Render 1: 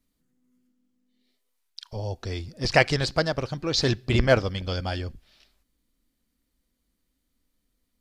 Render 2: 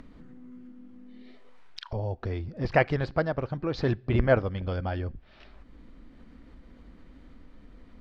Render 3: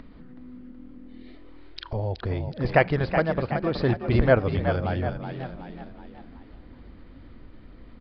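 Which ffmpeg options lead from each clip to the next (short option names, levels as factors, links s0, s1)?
-af "lowpass=1700,acompressor=mode=upward:threshold=0.0631:ratio=2.5,volume=0.794"
-filter_complex "[0:a]asplit=2[s0][s1];[s1]asplit=5[s2][s3][s4][s5][s6];[s2]adelay=373,afreqshift=41,volume=0.398[s7];[s3]adelay=746,afreqshift=82,volume=0.186[s8];[s4]adelay=1119,afreqshift=123,volume=0.0881[s9];[s5]adelay=1492,afreqshift=164,volume=0.0412[s10];[s6]adelay=1865,afreqshift=205,volume=0.0195[s11];[s7][s8][s9][s10][s11]amix=inputs=5:normalize=0[s12];[s0][s12]amix=inputs=2:normalize=0,aresample=11025,aresample=44100,volume=1.41"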